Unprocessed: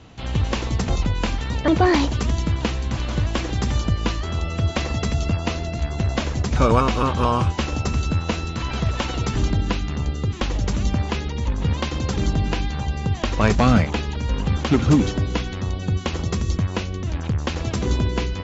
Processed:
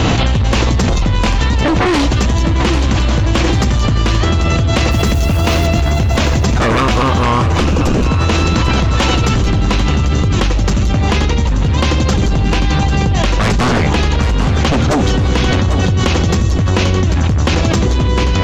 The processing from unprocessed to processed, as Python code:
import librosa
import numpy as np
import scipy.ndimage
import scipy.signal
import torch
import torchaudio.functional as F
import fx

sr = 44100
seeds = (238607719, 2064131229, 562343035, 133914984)

y = fx.mod_noise(x, sr, seeds[0], snr_db=24, at=(4.9, 5.66), fade=0.02)
y = fx.low_shelf(y, sr, hz=250.0, db=12.0, at=(7.52, 8.07))
y = fx.fold_sine(y, sr, drive_db=14, ceiling_db=-1.0)
y = fx.comb_fb(y, sr, f0_hz=110.0, decay_s=1.5, harmonics='odd', damping=0.0, mix_pct=60)
y = fx.echo_feedback(y, sr, ms=795, feedback_pct=49, wet_db=-11)
y = fx.env_flatten(y, sr, amount_pct=100)
y = F.gain(torch.from_numpy(y), -3.5).numpy()